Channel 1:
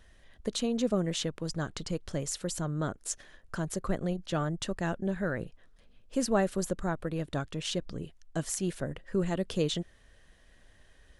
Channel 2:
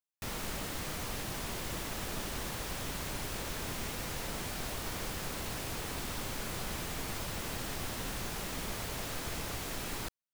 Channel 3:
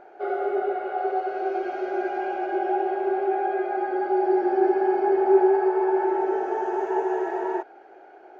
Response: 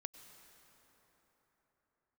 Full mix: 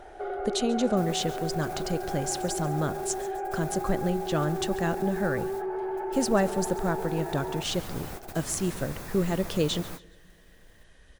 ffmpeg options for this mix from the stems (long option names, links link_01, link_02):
-filter_complex "[0:a]volume=2.5dB,asplit=4[link_01][link_02][link_03][link_04];[link_02]volume=-17dB[link_05];[link_03]volume=-18dB[link_06];[1:a]highshelf=frequency=7500:gain=10.5,bandreject=frequency=3000:width=8.9,adelay=750,volume=-0.5dB[link_07];[2:a]asoftclip=type=tanh:threshold=-15dB,volume=1dB[link_08];[link_04]apad=whole_len=488779[link_09];[link_07][link_09]sidechaingate=range=-34dB:threshold=-47dB:ratio=16:detection=peak[link_10];[link_10][link_08]amix=inputs=2:normalize=0,acrossover=split=1800|5600[link_11][link_12][link_13];[link_11]acompressor=threshold=-26dB:ratio=4[link_14];[link_12]acompressor=threshold=-54dB:ratio=4[link_15];[link_13]acompressor=threshold=-47dB:ratio=4[link_16];[link_14][link_15][link_16]amix=inputs=3:normalize=0,alimiter=level_in=2.5dB:limit=-24dB:level=0:latency=1:release=33,volume=-2.5dB,volume=0dB[link_17];[3:a]atrim=start_sample=2205[link_18];[link_05][link_18]afir=irnorm=-1:irlink=0[link_19];[link_06]aecho=0:1:139|278|417|556|695:1|0.36|0.13|0.0467|0.0168[link_20];[link_01][link_17][link_19][link_20]amix=inputs=4:normalize=0"